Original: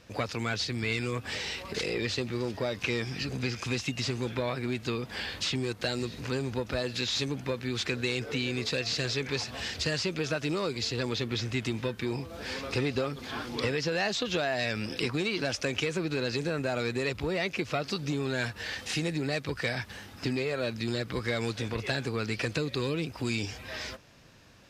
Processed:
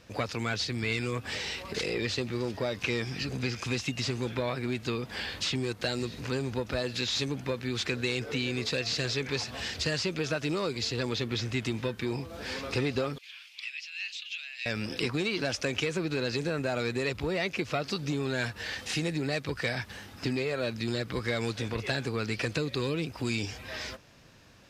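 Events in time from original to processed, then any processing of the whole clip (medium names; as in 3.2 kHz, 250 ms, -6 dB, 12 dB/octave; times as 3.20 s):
13.18–14.66 s: ladder high-pass 2.3 kHz, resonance 65%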